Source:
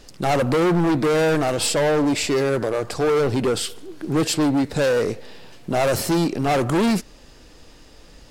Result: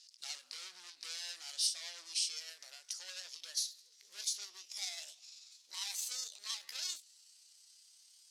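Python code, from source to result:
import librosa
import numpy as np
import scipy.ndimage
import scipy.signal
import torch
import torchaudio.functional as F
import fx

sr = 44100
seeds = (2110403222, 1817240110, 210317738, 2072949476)

y = fx.pitch_glide(x, sr, semitones=9.5, runs='starting unshifted')
y = fx.ladder_bandpass(y, sr, hz=5800.0, resonance_pct=40)
y = fx.end_taper(y, sr, db_per_s=190.0)
y = F.gain(torch.from_numpy(y), 4.0).numpy()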